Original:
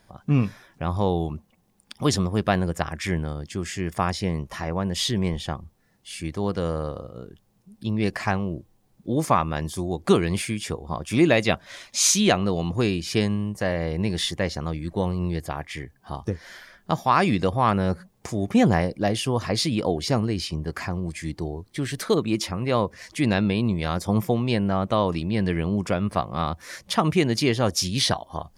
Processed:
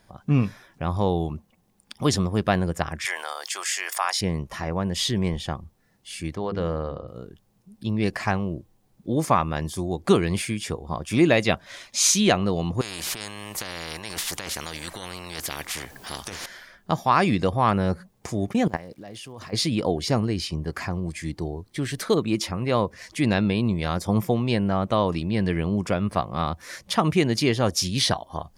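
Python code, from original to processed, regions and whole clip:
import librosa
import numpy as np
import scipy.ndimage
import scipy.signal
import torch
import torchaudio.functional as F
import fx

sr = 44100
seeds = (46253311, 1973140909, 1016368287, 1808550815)

y = fx.chain(x, sr, fx.highpass(hz=750.0, slope=24),
    fx.high_shelf(hz=5000.0, db=8.0),
    fx.env_flatten(amount_pct=50), at=(3.05, 4.21))
y = fx.chain(y, sr, fx.lowpass(hz=3700.0, slope=12),
    fx.hum_notches(base_hz=50, count=8), at=(6.35, 7.08))
y = fx.chain(y, sr, fx.over_compress(threshold_db=-29.0, ratio=-1.0),
    fx.spectral_comp(ratio=4.0), at=(12.81, 16.46))
y = fx.highpass(y, sr, hz=110.0, slope=6, at=(18.5, 19.52), fade=0.02)
y = fx.level_steps(y, sr, step_db=20, at=(18.5, 19.52), fade=0.02)
y = fx.dmg_crackle(y, sr, seeds[0], per_s=360.0, level_db=-50.0, at=(18.5, 19.52), fade=0.02)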